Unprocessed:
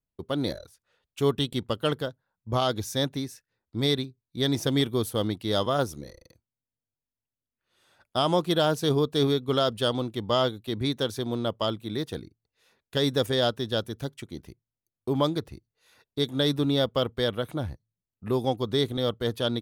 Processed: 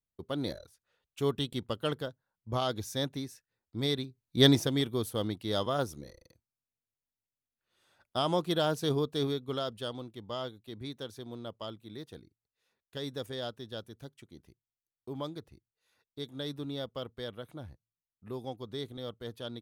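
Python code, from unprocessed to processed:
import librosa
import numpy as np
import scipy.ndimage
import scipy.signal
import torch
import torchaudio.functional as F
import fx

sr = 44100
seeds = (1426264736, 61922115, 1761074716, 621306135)

y = fx.gain(x, sr, db=fx.line((3.99, -6.0), (4.46, 5.5), (4.7, -5.5), (8.9, -5.5), (10.1, -13.5)))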